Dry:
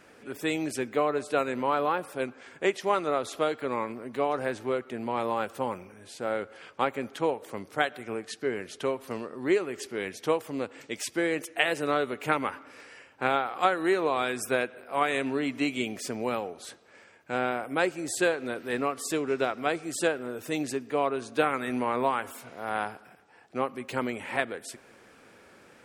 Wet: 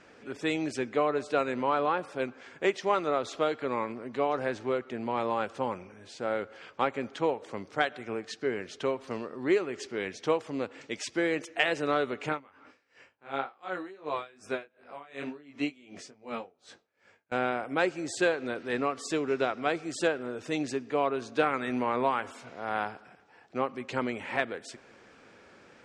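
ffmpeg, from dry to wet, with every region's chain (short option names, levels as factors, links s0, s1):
-filter_complex "[0:a]asettb=1/sr,asplit=3[s0][s1][s2];[s0]atrim=end=12.294[s3];[s1]atrim=start=12.29:end=17.32,asetpts=PTS-STARTPTS,afade=t=in:d=0.004:c=qsin,afade=t=out:st=5.026:d=0.004:c=qsin,flanger=delay=19.5:depth=2.7:speed=2.3,aeval=exprs='val(0)*pow(10,-24*(0.5-0.5*cos(2*PI*2.7*n/s))/20)':c=same[s4];[s2]atrim=start=17.316[s5];[s3][s4]acrossfade=d=0.004:c1=hsin:c2=qsin[s6];[s6][s5]acrossfade=d=0.004:c1=qsin:c2=hsin,lowpass=f=7000:w=0.5412,lowpass=f=7000:w=1.3066,acontrast=49,volume=0.473"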